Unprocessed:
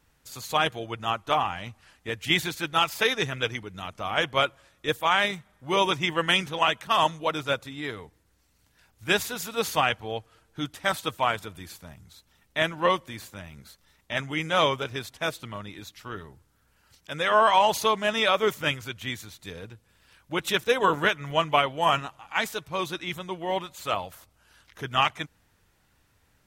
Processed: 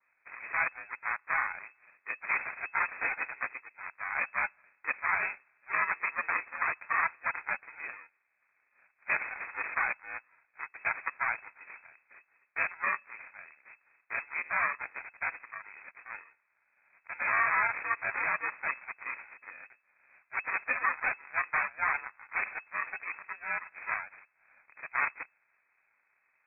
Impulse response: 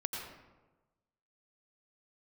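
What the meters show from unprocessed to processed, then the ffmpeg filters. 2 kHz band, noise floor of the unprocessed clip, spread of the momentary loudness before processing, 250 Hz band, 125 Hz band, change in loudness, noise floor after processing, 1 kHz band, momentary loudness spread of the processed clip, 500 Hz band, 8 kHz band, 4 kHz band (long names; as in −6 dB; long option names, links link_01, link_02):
−1.5 dB, −67 dBFS, 17 LU, −24.0 dB, below −20 dB, −6.5 dB, −75 dBFS, −9.0 dB, 17 LU, −21.0 dB, below −40 dB, below −40 dB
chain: -af "highpass=630,acrusher=samples=20:mix=1:aa=0.000001,aeval=exprs='0.15*(abs(mod(val(0)/0.15+3,4)-2)-1)':channel_layout=same,aeval=exprs='val(0)*sin(2*PI*350*n/s)':channel_layout=same,lowpass=frequency=2200:width_type=q:width=0.5098,lowpass=frequency=2200:width_type=q:width=0.6013,lowpass=frequency=2200:width_type=q:width=0.9,lowpass=frequency=2200:width_type=q:width=2.563,afreqshift=-2600,adynamicequalizer=threshold=0.01:dfrequency=1900:dqfactor=0.7:tfrequency=1900:tqfactor=0.7:attack=5:release=100:ratio=0.375:range=2.5:mode=cutabove:tftype=highshelf"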